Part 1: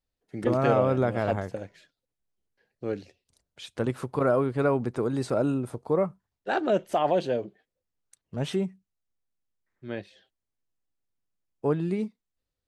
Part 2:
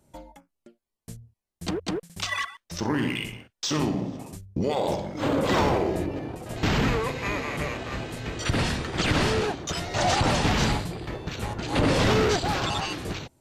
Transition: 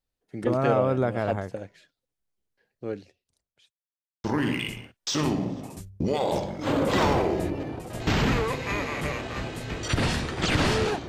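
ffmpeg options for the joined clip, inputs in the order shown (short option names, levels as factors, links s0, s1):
-filter_complex "[0:a]apad=whole_dur=11.08,atrim=end=11.08,asplit=2[s0][s1];[s0]atrim=end=3.73,asetpts=PTS-STARTPTS,afade=t=out:st=2.4:d=1.33:c=qsin[s2];[s1]atrim=start=3.73:end=4.24,asetpts=PTS-STARTPTS,volume=0[s3];[1:a]atrim=start=2.8:end=9.64,asetpts=PTS-STARTPTS,afade=t=in:d=0.004:c=hsin[s4];[s2][s3][s4]concat=n=3:v=0:a=1"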